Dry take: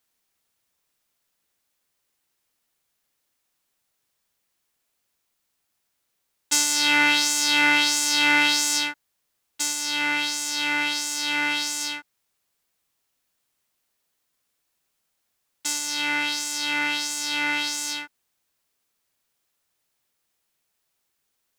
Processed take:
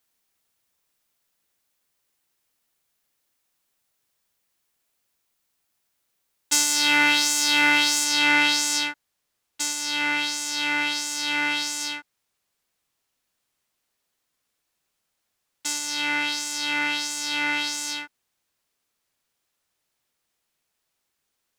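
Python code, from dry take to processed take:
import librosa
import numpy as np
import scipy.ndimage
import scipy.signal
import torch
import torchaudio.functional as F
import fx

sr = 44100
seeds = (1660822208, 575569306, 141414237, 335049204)

y = fx.high_shelf(x, sr, hz=11000.0, db=fx.steps((0.0, 2.0), (8.03, -5.5)))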